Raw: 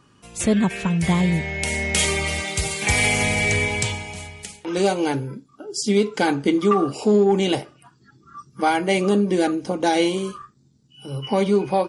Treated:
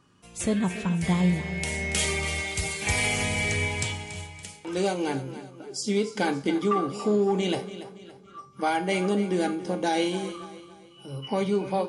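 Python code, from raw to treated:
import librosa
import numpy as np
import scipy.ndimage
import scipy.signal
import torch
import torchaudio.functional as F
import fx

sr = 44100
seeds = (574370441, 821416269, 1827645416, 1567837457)

p1 = fx.comb_fb(x, sr, f0_hz=90.0, decay_s=0.49, harmonics='all', damping=0.0, mix_pct=60)
y = p1 + fx.echo_feedback(p1, sr, ms=283, feedback_pct=42, wet_db=-13.5, dry=0)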